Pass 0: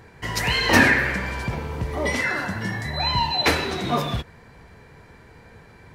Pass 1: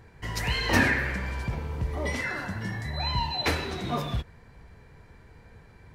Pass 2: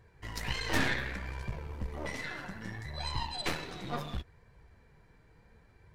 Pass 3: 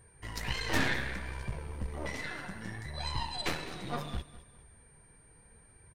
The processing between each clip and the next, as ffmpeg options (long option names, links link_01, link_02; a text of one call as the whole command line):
ffmpeg -i in.wav -af "lowshelf=frequency=87:gain=11.5,volume=-7.5dB" out.wav
ffmpeg -i in.wav -af "aeval=exprs='0.376*(cos(1*acos(clip(val(0)/0.376,-1,1)))-cos(1*PI/2))+0.0841*(cos(6*acos(clip(val(0)/0.376,-1,1)))-cos(6*PI/2))':channel_layout=same,flanger=delay=1.8:depth=4.8:regen=-47:speed=0.67:shape=sinusoidal,volume=-5dB" out.wav
ffmpeg -i in.wav -af "aeval=exprs='val(0)+0.000794*sin(2*PI*8800*n/s)':channel_layout=same,aecho=1:1:204|408|612:0.158|0.0539|0.0183" out.wav